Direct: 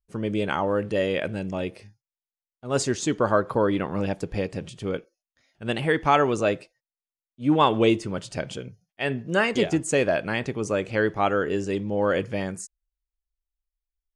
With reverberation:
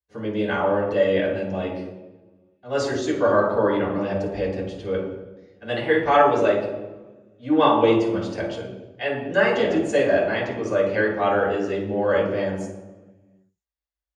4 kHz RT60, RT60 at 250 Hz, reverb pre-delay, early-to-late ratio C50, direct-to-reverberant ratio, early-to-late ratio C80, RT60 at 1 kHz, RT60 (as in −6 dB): 0.80 s, 1.5 s, 3 ms, 3.5 dB, −6.5 dB, 6.5 dB, 1.0 s, 1.2 s